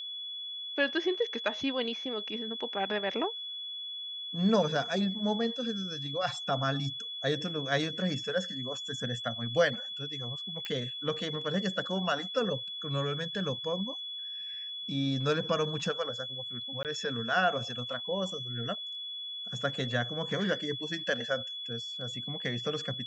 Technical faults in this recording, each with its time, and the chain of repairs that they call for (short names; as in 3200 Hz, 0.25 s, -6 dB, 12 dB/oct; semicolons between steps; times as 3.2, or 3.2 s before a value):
tone 3400 Hz -37 dBFS
10.65 pop -21 dBFS
16.83–16.85 gap 18 ms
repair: de-click; notch 3400 Hz, Q 30; interpolate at 16.83, 18 ms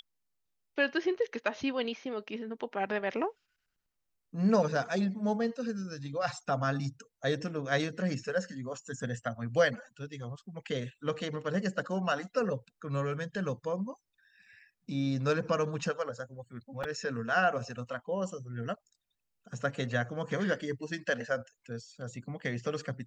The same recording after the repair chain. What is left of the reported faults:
none